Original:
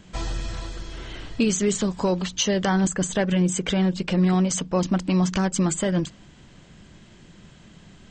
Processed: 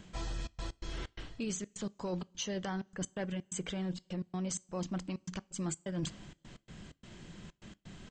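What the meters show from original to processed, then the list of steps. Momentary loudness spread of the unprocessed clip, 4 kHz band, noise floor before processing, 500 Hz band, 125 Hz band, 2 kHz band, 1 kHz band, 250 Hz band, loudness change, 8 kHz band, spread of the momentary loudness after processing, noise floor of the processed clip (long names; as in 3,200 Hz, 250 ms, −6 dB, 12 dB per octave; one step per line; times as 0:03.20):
13 LU, −14.0 dB, −50 dBFS, −16.0 dB, −15.5 dB, −15.5 dB, −16.0 dB, −16.5 dB, −16.0 dB, −14.0 dB, 15 LU, −75 dBFS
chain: reversed playback
downward compressor 6 to 1, threshold −33 dBFS, peak gain reduction 15.5 dB
reversed playback
gate pattern "xxxx.x.xx." 128 BPM −60 dB
coupled-rooms reverb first 0.28 s, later 2 s, from −21 dB, DRR 19.5 dB
level −2 dB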